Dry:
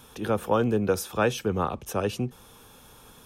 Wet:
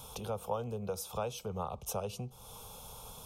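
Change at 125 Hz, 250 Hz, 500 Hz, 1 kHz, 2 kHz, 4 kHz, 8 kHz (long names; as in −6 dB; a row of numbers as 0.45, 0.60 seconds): −10.0, −16.5, −12.0, −10.0, −19.5, −8.5, −4.5 decibels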